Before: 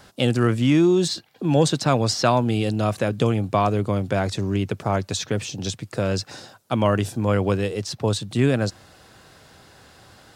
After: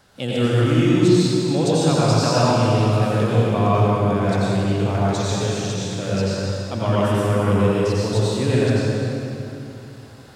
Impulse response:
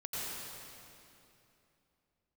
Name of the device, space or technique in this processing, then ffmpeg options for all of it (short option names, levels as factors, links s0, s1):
stairwell: -filter_complex "[1:a]atrim=start_sample=2205[s0];[0:a][s0]afir=irnorm=-1:irlink=0,volume=0.891"